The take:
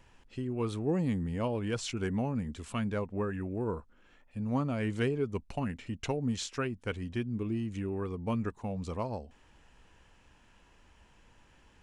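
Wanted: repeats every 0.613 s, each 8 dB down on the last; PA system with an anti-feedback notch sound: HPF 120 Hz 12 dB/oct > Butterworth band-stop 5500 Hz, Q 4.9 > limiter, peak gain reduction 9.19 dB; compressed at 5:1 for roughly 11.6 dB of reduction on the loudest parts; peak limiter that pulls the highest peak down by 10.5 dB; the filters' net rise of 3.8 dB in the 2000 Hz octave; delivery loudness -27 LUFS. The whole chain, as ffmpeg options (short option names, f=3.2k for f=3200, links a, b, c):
-af "equalizer=f=2k:t=o:g=5,acompressor=threshold=-39dB:ratio=5,alimiter=level_in=14dB:limit=-24dB:level=0:latency=1,volume=-14dB,highpass=120,asuperstop=centerf=5500:order=8:qfactor=4.9,aecho=1:1:613|1226|1839|2452|3065:0.398|0.159|0.0637|0.0255|0.0102,volume=24.5dB,alimiter=limit=-17dB:level=0:latency=1"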